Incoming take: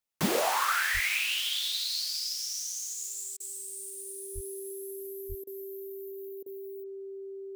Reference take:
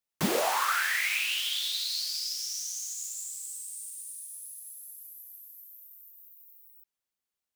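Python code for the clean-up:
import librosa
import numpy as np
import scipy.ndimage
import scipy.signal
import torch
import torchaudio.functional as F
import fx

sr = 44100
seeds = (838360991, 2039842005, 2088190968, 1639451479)

y = fx.notch(x, sr, hz=390.0, q=30.0)
y = fx.highpass(y, sr, hz=140.0, slope=24, at=(0.93, 1.05), fade=0.02)
y = fx.highpass(y, sr, hz=140.0, slope=24, at=(4.34, 4.46), fade=0.02)
y = fx.highpass(y, sr, hz=140.0, slope=24, at=(5.28, 5.4), fade=0.02)
y = fx.fix_interpolate(y, sr, at_s=(3.37, 5.44, 6.43), length_ms=30.0)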